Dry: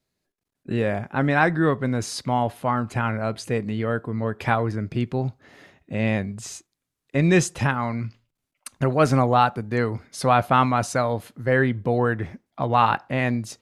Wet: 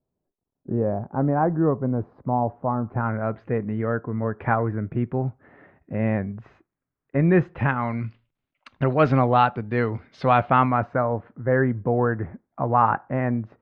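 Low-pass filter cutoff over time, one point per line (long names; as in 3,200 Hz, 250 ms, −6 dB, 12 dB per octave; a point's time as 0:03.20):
low-pass filter 24 dB per octave
0:02.79 1,000 Hz
0:03.21 1,800 Hz
0:07.41 1,800 Hz
0:07.99 3,400 Hz
0:10.32 3,400 Hz
0:10.98 1,600 Hz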